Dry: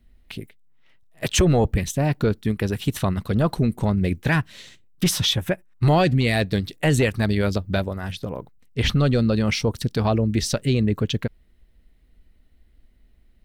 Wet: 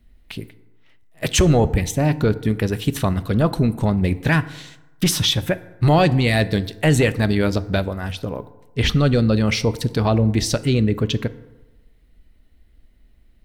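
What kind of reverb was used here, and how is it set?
FDN reverb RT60 1.1 s, low-frequency decay 0.9×, high-frequency decay 0.5×, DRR 13.5 dB; trim +2.5 dB

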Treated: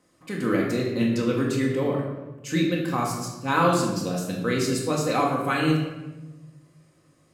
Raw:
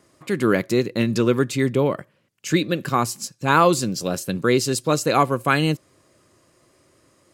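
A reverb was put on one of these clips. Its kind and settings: simulated room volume 590 m³, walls mixed, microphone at 2 m; trim -9 dB

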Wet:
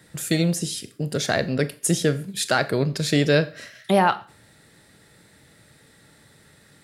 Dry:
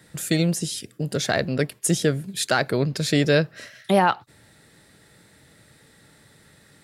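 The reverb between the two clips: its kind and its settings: Schroeder reverb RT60 0.37 s, combs from 27 ms, DRR 13.5 dB

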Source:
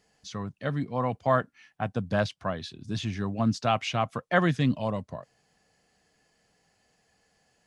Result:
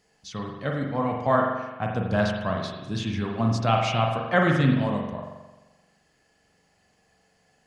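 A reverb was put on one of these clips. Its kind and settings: spring tank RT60 1.1 s, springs 43 ms, chirp 70 ms, DRR 0.5 dB; trim +1 dB

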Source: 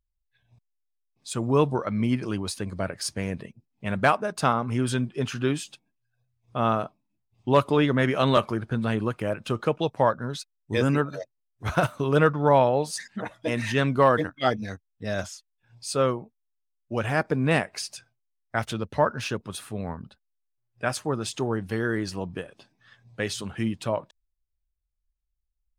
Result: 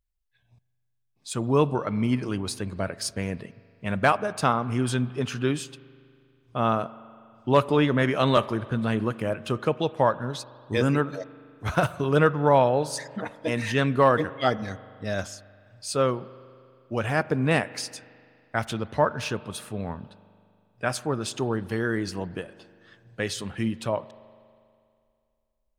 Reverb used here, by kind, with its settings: spring tank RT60 2.4 s, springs 40 ms, chirp 45 ms, DRR 17.5 dB

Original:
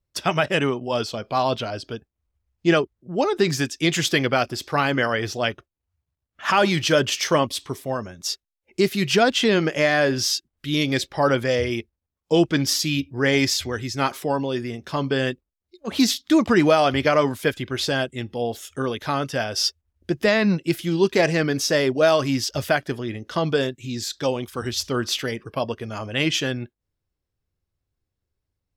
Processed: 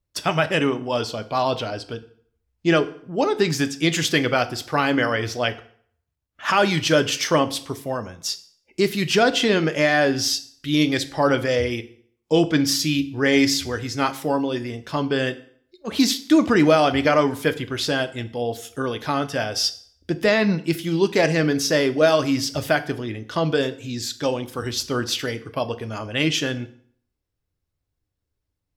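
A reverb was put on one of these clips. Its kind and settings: FDN reverb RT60 0.58 s, low-frequency decay 1×, high-frequency decay 0.85×, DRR 10 dB

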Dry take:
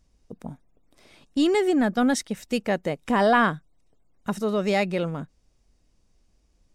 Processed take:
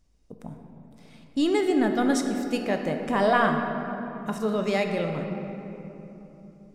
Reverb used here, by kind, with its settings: simulated room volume 200 m³, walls hard, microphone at 0.32 m; trim -3 dB

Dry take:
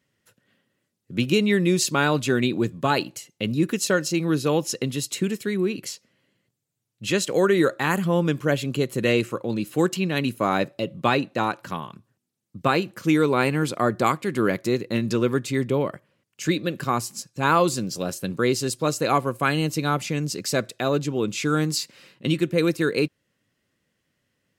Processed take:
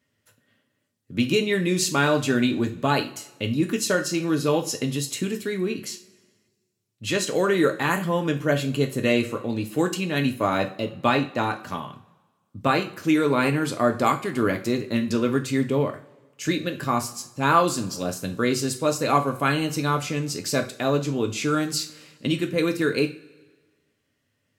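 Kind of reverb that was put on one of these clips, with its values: two-slope reverb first 0.33 s, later 1.5 s, from -20 dB, DRR 4 dB; trim -1.5 dB

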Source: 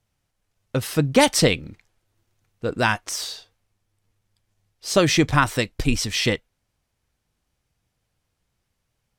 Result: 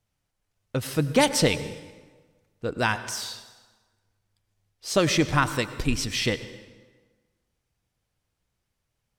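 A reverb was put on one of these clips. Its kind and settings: plate-style reverb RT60 1.4 s, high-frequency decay 0.75×, pre-delay 80 ms, DRR 13 dB; trim -4 dB

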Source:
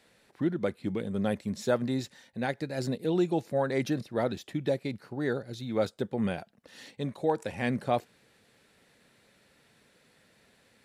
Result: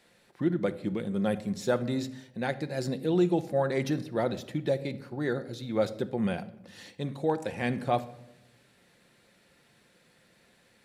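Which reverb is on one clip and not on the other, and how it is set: simulated room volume 3000 m³, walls furnished, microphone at 0.88 m

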